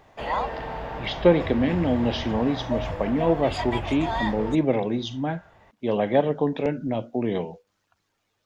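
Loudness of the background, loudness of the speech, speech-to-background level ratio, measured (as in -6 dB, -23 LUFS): -31.5 LUFS, -25.0 LUFS, 6.5 dB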